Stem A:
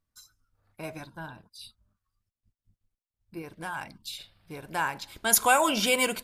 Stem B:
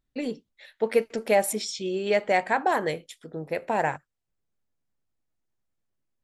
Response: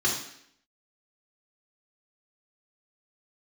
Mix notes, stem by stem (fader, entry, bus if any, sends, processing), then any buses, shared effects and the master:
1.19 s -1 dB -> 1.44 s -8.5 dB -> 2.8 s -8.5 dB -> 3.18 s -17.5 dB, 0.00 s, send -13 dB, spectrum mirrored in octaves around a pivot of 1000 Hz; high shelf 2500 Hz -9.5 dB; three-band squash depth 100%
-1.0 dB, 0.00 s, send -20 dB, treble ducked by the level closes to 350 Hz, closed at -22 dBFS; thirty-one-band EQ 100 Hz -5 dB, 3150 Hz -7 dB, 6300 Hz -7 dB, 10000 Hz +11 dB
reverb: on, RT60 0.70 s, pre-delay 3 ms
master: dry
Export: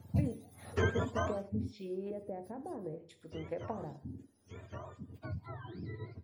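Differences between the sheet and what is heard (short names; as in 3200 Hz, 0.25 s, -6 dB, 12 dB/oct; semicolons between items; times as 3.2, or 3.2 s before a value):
stem A: send off; stem B -1.0 dB -> -9.5 dB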